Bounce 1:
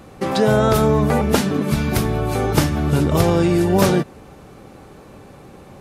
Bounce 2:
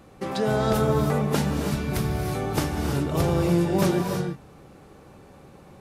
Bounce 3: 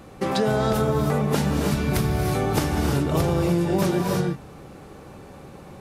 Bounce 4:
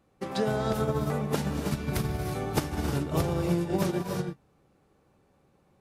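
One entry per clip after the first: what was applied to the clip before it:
reverb whose tail is shaped and stops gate 350 ms rising, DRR 4 dB; level −8.5 dB
downward compressor, threshold −24 dBFS, peak gain reduction 7.5 dB; level +6 dB
expander for the loud parts 2.5 to 1, over −32 dBFS; level −3 dB

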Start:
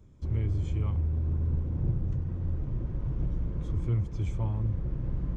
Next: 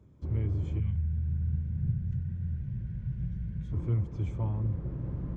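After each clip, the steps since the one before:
high-pass filter 69 Hz
high-shelf EQ 2,900 Hz −10.5 dB
gain on a spectral selection 0:00.79–0:03.72, 220–1,400 Hz −17 dB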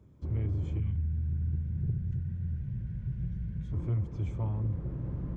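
soft clipping −22 dBFS, distortion −22 dB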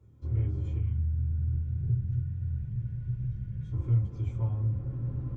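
convolution reverb, pre-delay 3 ms, DRR −1 dB
level −7.5 dB

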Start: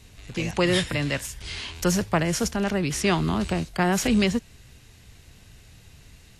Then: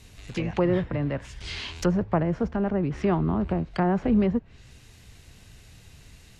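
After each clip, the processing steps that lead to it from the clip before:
treble cut that deepens with the level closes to 1,000 Hz, closed at −22 dBFS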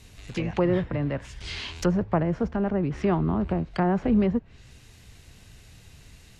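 no processing that can be heard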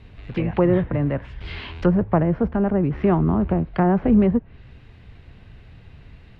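high-frequency loss of the air 420 metres
level +6 dB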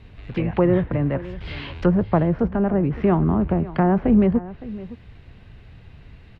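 single-tap delay 563 ms −17 dB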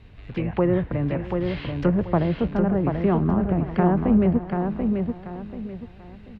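repeating echo 736 ms, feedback 30%, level −5 dB
level −3 dB

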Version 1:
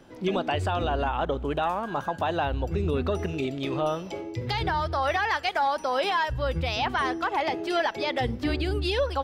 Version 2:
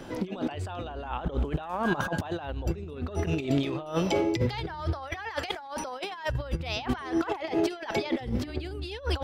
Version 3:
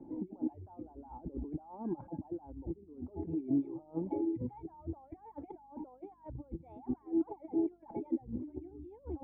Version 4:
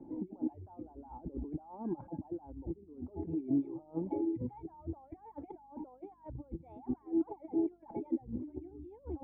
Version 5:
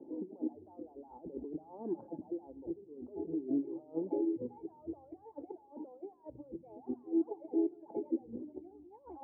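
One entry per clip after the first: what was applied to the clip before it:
compressor whose output falls as the input rises −33 dBFS, ratio −0.5; level +3.5 dB
reverb reduction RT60 0.86 s; mains hum 50 Hz, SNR 30 dB; formant resonators in series u
no processing that can be heard
band-pass filter sweep 460 Hz → 920 Hz, 0:08.39–0:09.03; on a send at −18 dB: convolution reverb RT60 1.1 s, pre-delay 3 ms; on the sum: level +6 dB

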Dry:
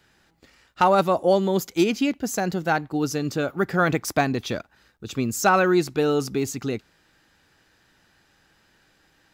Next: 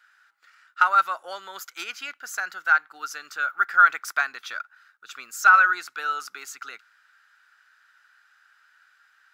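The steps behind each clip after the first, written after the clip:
high-pass with resonance 1,400 Hz, resonance Q 7.2
level −6 dB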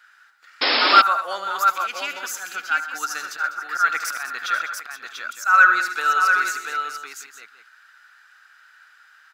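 volume swells 190 ms
multi-tap delay 77/127/200/491/690/860 ms −11.5/−13.5/−13.5/−18/−5/−14.5 dB
sound drawn into the spectrogram noise, 0:00.61–0:01.02, 230–5,400 Hz −25 dBFS
level +6 dB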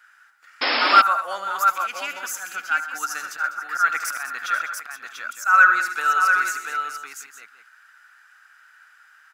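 graphic EQ with 15 bands 400 Hz −5 dB, 4,000 Hz −7 dB, 10,000 Hz +3 dB

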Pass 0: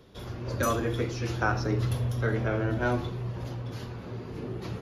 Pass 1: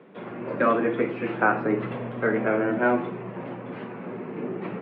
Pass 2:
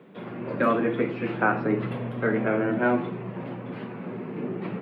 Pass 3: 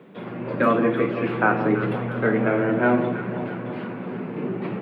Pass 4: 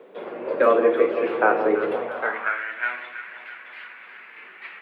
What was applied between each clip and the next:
elliptic band-pass filter 180–2,400 Hz, stop band 40 dB; level +7 dB
bass and treble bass +6 dB, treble +12 dB; level −2 dB
delay that swaps between a low-pass and a high-pass 166 ms, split 1,100 Hz, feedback 77%, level −8.5 dB; level +3 dB
high-pass filter sweep 470 Hz → 1,900 Hz, 0:02.01–0:02.64; level −1.5 dB

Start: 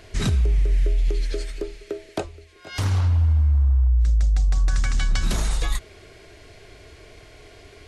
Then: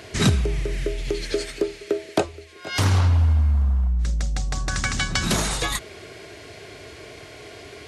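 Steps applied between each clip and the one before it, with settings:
high-pass filter 110 Hz 12 dB per octave
level +7 dB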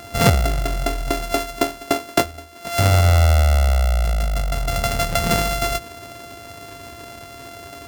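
samples sorted by size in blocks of 64 samples
level +3.5 dB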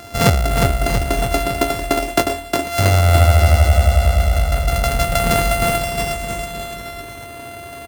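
bouncing-ball delay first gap 360 ms, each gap 0.9×, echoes 5
level +1 dB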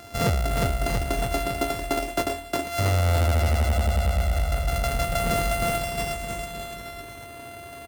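hard clipping −11 dBFS, distortion −13 dB
level −7 dB

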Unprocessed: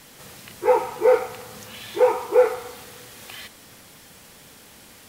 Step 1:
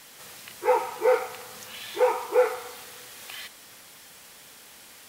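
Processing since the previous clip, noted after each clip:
low-shelf EQ 410 Hz −12 dB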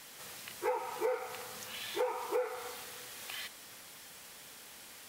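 downward compressor 10 to 1, threshold −27 dBFS, peak gain reduction 12.5 dB
level −3 dB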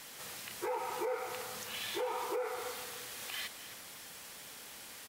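brickwall limiter −30 dBFS, peak gain reduction 8 dB
single-tap delay 265 ms −14 dB
level +2 dB

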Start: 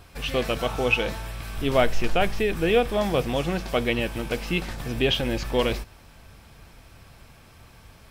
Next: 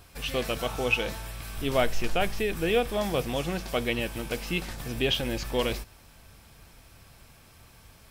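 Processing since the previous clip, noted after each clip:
high-shelf EQ 5,300 Hz +8 dB
level −4.5 dB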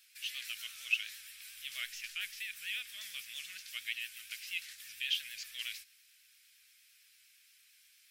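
pitch vibrato 8.7 Hz 63 cents
inverse Chebyshev high-pass filter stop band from 960 Hz, stop band 40 dB
level −5.5 dB

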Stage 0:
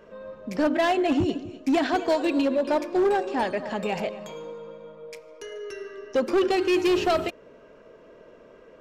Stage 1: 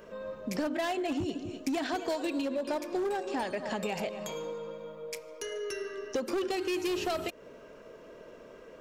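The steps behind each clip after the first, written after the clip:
high-shelf EQ 5,900 Hz +12 dB
downward compressor 6 to 1, threshold −30 dBFS, peak gain reduction 10.5 dB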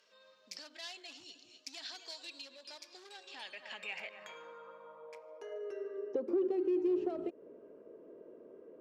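band-pass filter sweep 4,600 Hz → 350 Hz, 0:03.02–0:06.37
level +1 dB

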